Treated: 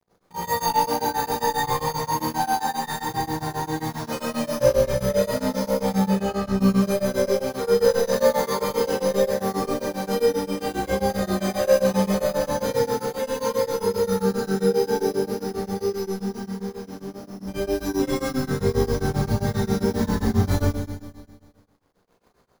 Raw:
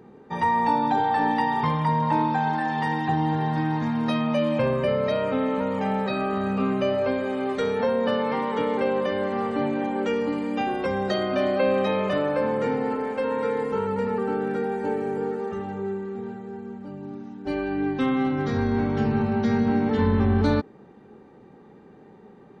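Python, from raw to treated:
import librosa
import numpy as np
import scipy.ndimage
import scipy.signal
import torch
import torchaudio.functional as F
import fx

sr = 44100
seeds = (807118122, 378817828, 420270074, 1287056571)

y = fx.wow_flutter(x, sr, seeds[0], rate_hz=2.1, depth_cents=27.0)
y = fx.chorus_voices(y, sr, voices=6, hz=0.51, base_ms=16, depth_ms=1.4, mix_pct=50)
y = np.repeat(scipy.signal.resample_poly(y, 1, 8), 8)[:len(y)]
y = fx.high_shelf(y, sr, hz=5000.0, db=-11.0, at=(6.04, 6.55))
y = 10.0 ** (-19.5 / 20.0) * np.tanh(y / 10.0 ** (-19.5 / 20.0))
y = fx.low_shelf(y, sr, hz=71.0, db=9.5)
y = np.sign(y) * np.maximum(np.abs(y) - 10.0 ** (-45.5 / 20.0), 0.0)
y = fx.echo_feedback(y, sr, ms=151, feedback_pct=59, wet_db=-15.0)
y = fx.rev_schroeder(y, sr, rt60_s=1.1, comb_ms=32, drr_db=-6.5)
y = y * np.abs(np.cos(np.pi * 7.5 * np.arange(len(y)) / sr))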